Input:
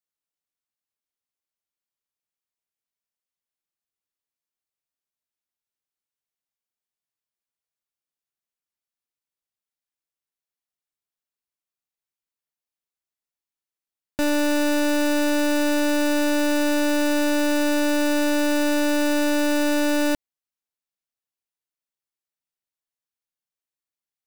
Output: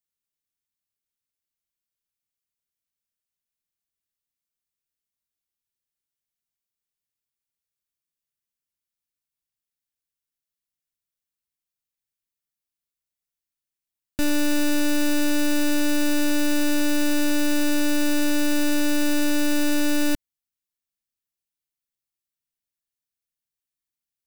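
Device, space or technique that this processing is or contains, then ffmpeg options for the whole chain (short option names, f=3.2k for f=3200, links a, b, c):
smiley-face EQ: -af "lowshelf=f=180:g=6,equalizer=f=730:t=o:w=1.8:g=-8.5,highshelf=f=9.7k:g=4.5"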